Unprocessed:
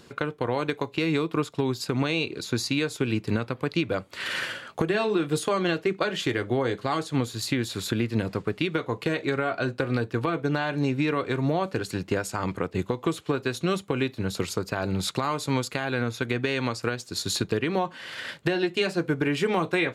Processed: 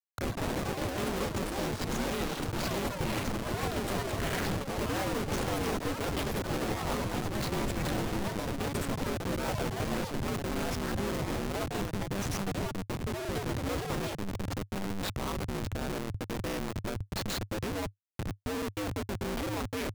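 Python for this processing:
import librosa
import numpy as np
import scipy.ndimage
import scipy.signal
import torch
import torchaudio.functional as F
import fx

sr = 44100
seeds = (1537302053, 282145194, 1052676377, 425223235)

y = fx.schmitt(x, sr, flips_db=-27.5)
y = y * np.sin(2.0 * np.pi * 100.0 * np.arange(len(y)) / sr)
y = fx.echo_pitch(y, sr, ms=82, semitones=6, count=3, db_per_echo=-3.0)
y = F.gain(torch.from_numpy(y), -3.0).numpy()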